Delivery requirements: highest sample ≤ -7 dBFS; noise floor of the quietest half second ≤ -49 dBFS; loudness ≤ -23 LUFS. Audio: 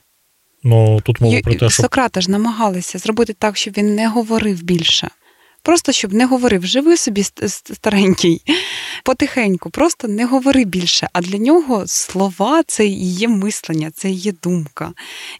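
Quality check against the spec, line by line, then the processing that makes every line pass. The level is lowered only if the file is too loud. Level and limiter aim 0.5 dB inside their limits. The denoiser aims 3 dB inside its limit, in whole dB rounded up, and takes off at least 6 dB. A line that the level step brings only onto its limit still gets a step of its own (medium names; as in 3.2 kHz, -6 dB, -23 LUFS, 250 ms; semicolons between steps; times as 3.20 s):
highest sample -3.0 dBFS: fail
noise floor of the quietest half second -60 dBFS: pass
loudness -15.5 LUFS: fail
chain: trim -8 dB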